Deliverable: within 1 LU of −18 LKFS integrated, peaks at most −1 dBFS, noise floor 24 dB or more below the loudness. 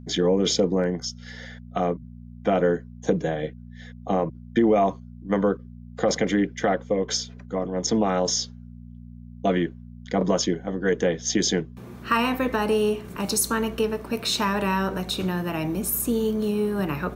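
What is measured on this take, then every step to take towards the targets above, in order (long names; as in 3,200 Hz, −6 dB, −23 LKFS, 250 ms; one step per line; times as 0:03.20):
mains hum 60 Hz; hum harmonics up to 240 Hz; level of the hum −40 dBFS; integrated loudness −24.5 LKFS; sample peak −8.5 dBFS; target loudness −18.0 LKFS
→ hum removal 60 Hz, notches 4
level +6.5 dB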